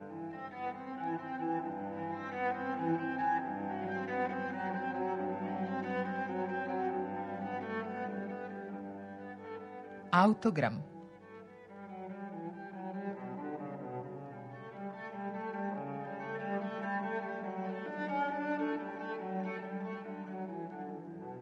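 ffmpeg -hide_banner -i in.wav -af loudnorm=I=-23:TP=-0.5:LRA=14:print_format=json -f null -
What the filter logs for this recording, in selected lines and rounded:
"input_i" : "-38.0",
"input_tp" : "-12.0",
"input_lra" : "7.2",
"input_thresh" : "-48.2",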